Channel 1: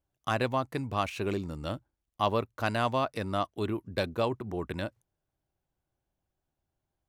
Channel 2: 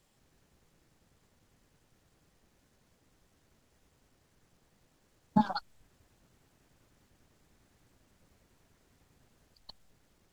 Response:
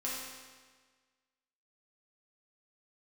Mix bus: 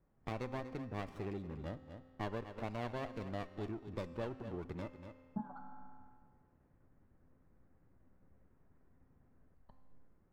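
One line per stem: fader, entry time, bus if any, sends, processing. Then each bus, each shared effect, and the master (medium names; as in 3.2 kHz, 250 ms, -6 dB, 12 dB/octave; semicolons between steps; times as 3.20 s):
-1.0 dB, 0.00 s, send -16.5 dB, echo send -13.5 dB, level-controlled noise filter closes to 960 Hz, open at -26 dBFS; loudest bins only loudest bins 64; sliding maximum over 17 samples
-11.5 dB, 0.00 s, send -5 dB, no echo send, low-pass 1.8 kHz 24 dB/octave; bass shelf 400 Hz +8 dB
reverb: on, RT60 1.5 s, pre-delay 4 ms
echo: delay 240 ms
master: compression 2:1, threshold -48 dBFS, peak gain reduction 14 dB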